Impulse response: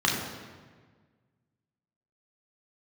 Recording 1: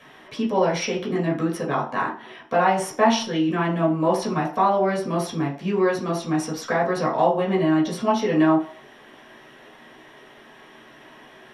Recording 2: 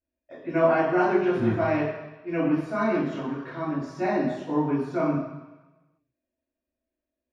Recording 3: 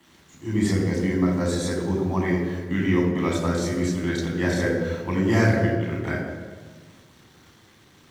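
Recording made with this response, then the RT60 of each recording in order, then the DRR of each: 3; 0.45, 1.1, 1.5 seconds; −4.5, −10.5, −2.5 decibels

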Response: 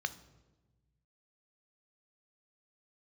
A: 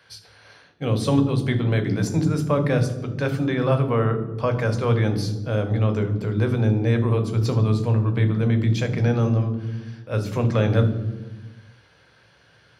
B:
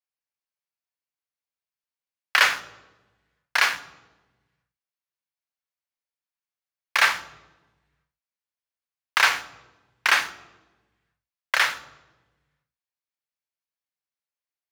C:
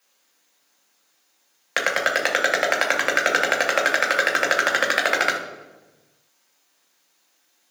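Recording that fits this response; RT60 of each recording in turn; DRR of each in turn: B; 1.2, 1.2, 1.2 seconds; 6.5, 11.5, 0.0 decibels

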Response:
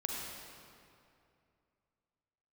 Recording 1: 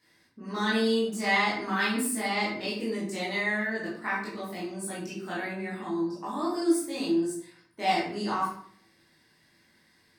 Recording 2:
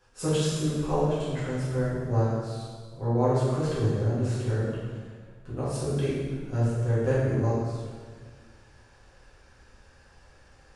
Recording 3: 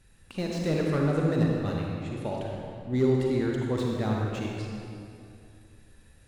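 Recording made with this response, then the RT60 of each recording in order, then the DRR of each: 3; 0.60, 1.6, 2.5 seconds; −8.5, −10.5, −2.0 decibels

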